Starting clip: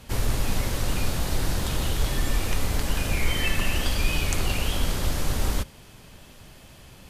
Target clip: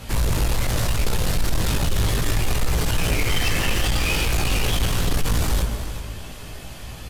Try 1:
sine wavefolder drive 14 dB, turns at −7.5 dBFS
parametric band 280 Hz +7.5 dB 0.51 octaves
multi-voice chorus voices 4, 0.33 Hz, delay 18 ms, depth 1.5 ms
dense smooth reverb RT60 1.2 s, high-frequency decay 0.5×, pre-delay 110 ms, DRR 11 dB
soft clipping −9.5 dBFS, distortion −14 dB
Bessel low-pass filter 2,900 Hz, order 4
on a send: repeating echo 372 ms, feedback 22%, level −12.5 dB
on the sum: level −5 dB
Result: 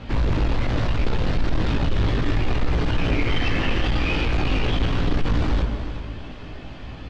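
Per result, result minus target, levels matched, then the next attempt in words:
250 Hz band +4.5 dB; 4,000 Hz band −4.0 dB
sine wavefolder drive 14 dB, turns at −7.5 dBFS
multi-voice chorus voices 4, 0.33 Hz, delay 18 ms, depth 1.5 ms
dense smooth reverb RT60 1.2 s, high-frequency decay 0.5×, pre-delay 110 ms, DRR 11 dB
soft clipping −9.5 dBFS, distortion −14 dB
Bessel low-pass filter 2,900 Hz, order 4
on a send: repeating echo 372 ms, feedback 22%, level −12.5 dB
on the sum: level −5 dB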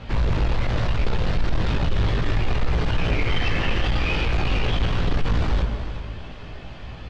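4,000 Hz band −3.5 dB
sine wavefolder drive 14 dB, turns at −7.5 dBFS
multi-voice chorus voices 4, 0.33 Hz, delay 18 ms, depth 1.5 ms
dense smooth reverb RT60 1.2 s, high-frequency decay 0.5×, pre-delay 110 ms, DRR 11 dB
soft clipping −9.5 dBFS, distortion −14 dB
on a send: repeating echo 372 ms, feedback 22%, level −12.5 dB
on the sum: level −5 dB

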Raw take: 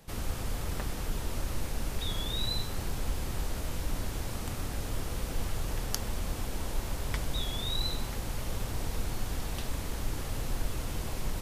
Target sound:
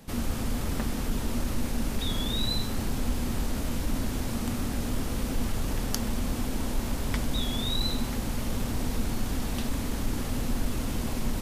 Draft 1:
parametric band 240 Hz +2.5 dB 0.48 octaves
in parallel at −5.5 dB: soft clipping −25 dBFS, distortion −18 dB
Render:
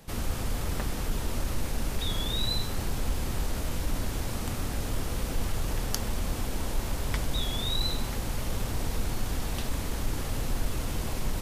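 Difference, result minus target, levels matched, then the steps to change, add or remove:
250 Hz band −5.0 dB
change: parametric band 240 Hz +12 dB 0.48 octaves

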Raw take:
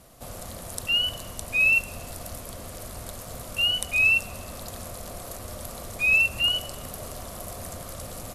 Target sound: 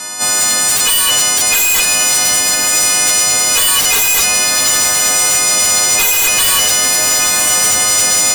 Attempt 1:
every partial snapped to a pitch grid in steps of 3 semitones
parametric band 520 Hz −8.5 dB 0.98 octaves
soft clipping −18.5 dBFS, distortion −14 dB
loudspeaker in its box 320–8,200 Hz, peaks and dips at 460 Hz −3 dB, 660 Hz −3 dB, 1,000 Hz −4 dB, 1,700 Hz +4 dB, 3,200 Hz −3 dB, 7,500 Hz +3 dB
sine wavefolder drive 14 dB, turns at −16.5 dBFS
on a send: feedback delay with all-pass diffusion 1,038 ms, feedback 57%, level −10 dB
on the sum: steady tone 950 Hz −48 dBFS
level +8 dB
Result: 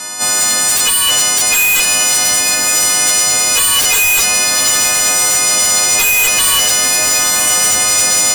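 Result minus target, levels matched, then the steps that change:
soft clipping: distortion +13 dB
change: soft clipping −10 dBFS, distortion −27 dB

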